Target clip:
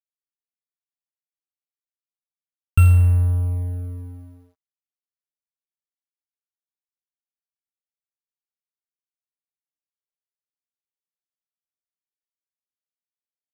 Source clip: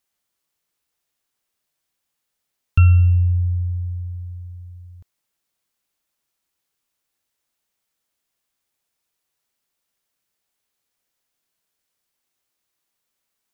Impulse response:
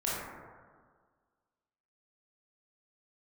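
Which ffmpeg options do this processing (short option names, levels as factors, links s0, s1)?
-af "acrusher=samples=4:mix=1:aa=0.000001,aeval=exprs='sgn(val(0))*max(abs(val(0))-0.0237,0)':c=same"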